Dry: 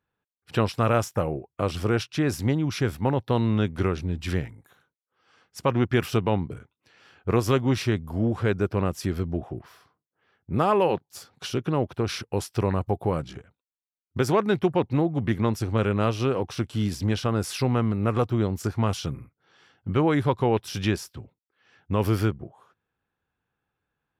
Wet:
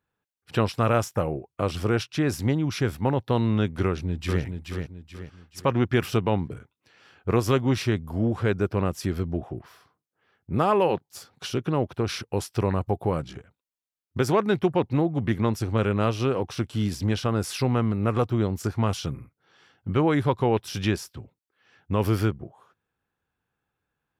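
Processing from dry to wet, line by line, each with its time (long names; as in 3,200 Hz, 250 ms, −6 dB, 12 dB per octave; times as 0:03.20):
0:03.85–0:04.43: delay throw 430 ms, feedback 40%, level −6 dB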